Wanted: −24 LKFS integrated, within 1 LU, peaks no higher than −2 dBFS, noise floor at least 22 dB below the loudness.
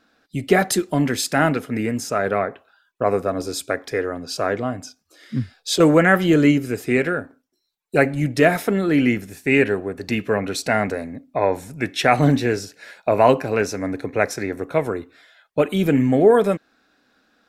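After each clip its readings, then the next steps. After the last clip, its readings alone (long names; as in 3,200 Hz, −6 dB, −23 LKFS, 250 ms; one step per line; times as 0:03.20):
integrated loudness −20.5 LKFS; sample peak −1.5 dBFS; target loudness −24.0 LKFS
→ level −3.5 dB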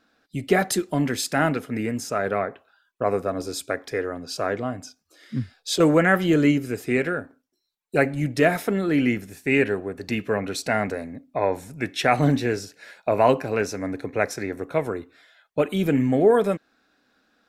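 integrated loudness −24.0 LKFS; sample peak −5.0 dBFS; background noise floor −72 dBFS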